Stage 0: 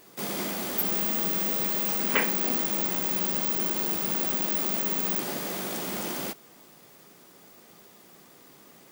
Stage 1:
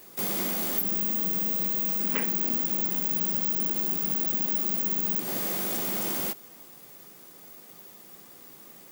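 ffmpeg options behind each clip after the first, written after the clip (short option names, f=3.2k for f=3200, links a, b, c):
-filter_complex "[0:a]highshelf=f=9.7k:g=9,acrossover=split=310[a][b];[b]acompressor=threshold=-25dB:ratio=5[c];[a][c]amix=inputs=2:normalize=0"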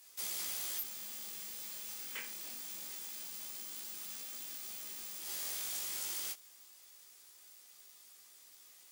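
-af "bandpass=f=6.6k:t=q:w=0.63:csg=0,flanger=delay=15:depth=7.3:speed=0.24"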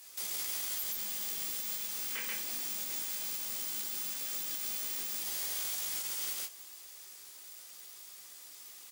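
-af "aecho=1:1:133:0.668,alimiter=level_in=9dB:limit=-24dB:level=0:latency=1:release=85,volume=-9dB,volume=6.5dB"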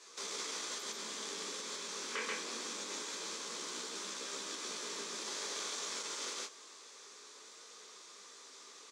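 -af "highpass=f=200:w=0.5412,highpass=f=200:w=1.3066,equalizer=f=440:t=q:w=4:g=10,equalizer=f=730:t=q:w=4:g=-7,equalizer=f=1.1k:t=q:w=4:g=6,equalizer=f=2k:t=q:w=4:g=-4,equalizer=f=2.9k:t=q:w=4:g=-7,equalizer=f=4.9k:t=q:w=4:g=-5,lowpass=f=6.3k:w=0.5412,lowpass=f=6.3k:w=1.3066,volume=4.5dB"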